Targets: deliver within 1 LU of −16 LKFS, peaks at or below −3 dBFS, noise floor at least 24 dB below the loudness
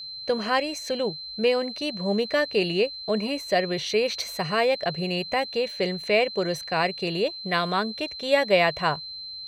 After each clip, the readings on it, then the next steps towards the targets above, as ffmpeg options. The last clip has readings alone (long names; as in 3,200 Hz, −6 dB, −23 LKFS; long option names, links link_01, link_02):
interfering tone 4,100 Hz; level of the tone −35 dBFS; integrated loudness −25.0 LKFS; sample peak −8.5 dBFS; target loudness −16.0 LKFS
→ -af "bandreject=frequency=4100:width=30"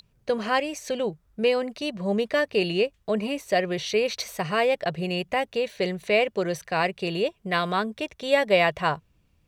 interfering tone none found; integrated loudness −25.5 LKFS; sample peak −8.5 dBFS; target loudness −16.0 LKFS
→ -af "volume=9.5dB,alimiter=limit=-3dB:level=0:latency=1"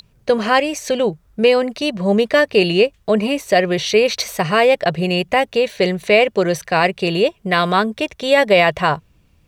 integrated loudness −16.5 LKFS; sample peak −3.0 dBFS; background noise floor −57 dBFS